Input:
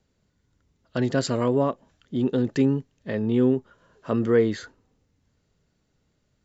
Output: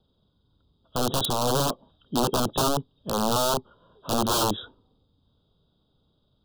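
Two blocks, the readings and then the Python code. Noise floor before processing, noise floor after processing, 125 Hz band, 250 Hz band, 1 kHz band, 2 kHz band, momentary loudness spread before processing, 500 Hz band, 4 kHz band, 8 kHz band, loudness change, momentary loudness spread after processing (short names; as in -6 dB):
-71 dBFS, -70 dBFS, -4.0 dB, -6.5 dB, +9.0 dB, -2.5 dB, 11 LU, -4.0 dB, +12.0 dB, n/a, -1.5 dB, 8 LU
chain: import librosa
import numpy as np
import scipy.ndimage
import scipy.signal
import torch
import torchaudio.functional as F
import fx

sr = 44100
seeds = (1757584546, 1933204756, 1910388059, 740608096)

y = fx.freq_compress(x, sr, knee_hz=3100.0, ratio=4.0)
y = (np.mod(10.0 ** (18.5 / 20.0) * y + 1.0, 2.0) - 1.0) / 10.0 ** (18.5 / 20.0)
y = scipy.signal.sosfilt(scipy.signal.cheby1(2, 1.0, [1200.0, 3500.0], 'bandstop', fs=sr, output='sos'), y)
y = y * librosa.db_to_amplitude(2.5)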